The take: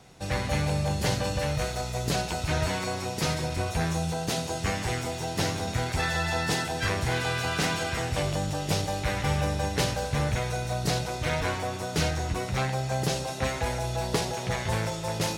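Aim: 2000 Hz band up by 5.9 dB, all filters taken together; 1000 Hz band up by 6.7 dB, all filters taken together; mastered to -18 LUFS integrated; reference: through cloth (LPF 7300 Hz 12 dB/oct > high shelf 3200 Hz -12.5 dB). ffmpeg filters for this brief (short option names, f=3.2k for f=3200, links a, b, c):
-af "lowpass=7.3k,equalizer=f=1k:t=o:g=8.5,equalizer=f=2k:t=o:g=8.5,highshelf=f=3.2k:g=-12.5,volume=8dB"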